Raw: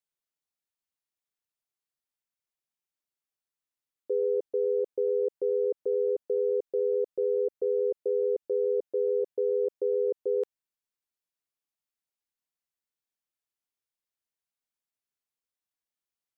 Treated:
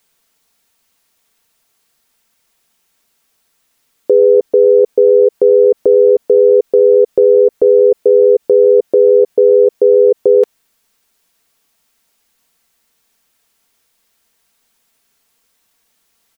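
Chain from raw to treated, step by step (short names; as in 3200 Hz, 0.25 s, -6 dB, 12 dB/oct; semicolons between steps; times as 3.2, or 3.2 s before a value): comb 4.4 ms, depth 38%; maximiser +29.5 dB; gain -1 dB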